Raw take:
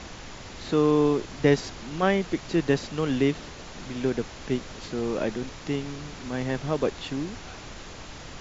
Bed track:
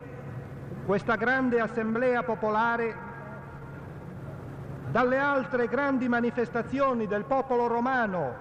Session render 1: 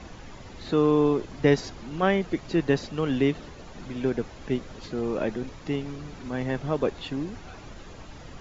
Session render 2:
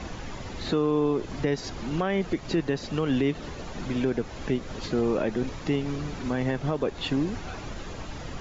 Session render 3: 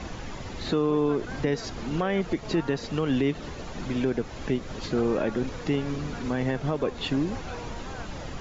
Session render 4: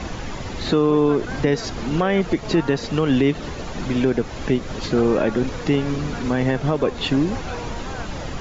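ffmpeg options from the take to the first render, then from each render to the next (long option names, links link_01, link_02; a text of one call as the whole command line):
ffmpeg -i in.wav -af "afftdn=noise_reduction=9:noise_floor=-42" out.wav
ffmpeg -i in.wav -filter_complex "[0:a]asplit=2[link_01][link_02];[link_02]acompressor=threshold=-29dB:ratio=6,volume=0.5dB[link_03];[link_01][link_03]amix=inputs=2:normalize=0,alimiter=limit=-15.5dB:level=0:latency=1:release=187" out.wav
ffmpeg -i in.wav -i bed.wav -filter_complex "[1:a]volume=-17dB[link_01];[0:a][link_01]amix=inputs=2:normalize=0" out.wav
ffmpeg -i in.wav -af "volume=7dB" out.wav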